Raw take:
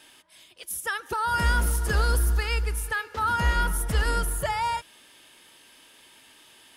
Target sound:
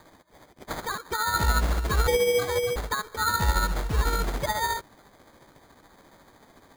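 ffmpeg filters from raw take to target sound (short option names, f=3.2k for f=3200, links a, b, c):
-filter_complex "[0:a]tremolo=f=14:d=0.46,asettb=1/sr,asplit=3[a][b][c];[a]atrim=end=2.074[d];[b]atrim=start=2.07:end=2.76,asetpts=PTS-STARTPTS,afade=t=in:d=0.004:c=qsin,afade=t=out:st=0.686:d=0.004:c=qsin,lowpass=f=2.8k:t=q:w=0.5098,lowpass=f=2.8k:t=q:w=0.6013,lowpass=f=2.8k:t=q:w=0.9,lowpass=f=2.8k:t=q:w=2.563,afreqshift=-3300[e];[c]atrim=start=2.756[f];[d][e]acrossfade=d=0.004:c1=hsin:c2=qsin[g];[g][f]acrossfade=d=0.004:c1=qsin:c2=hsin,acrusher=samples=16:mix=1:aa=0.000001,volume=1.5dB"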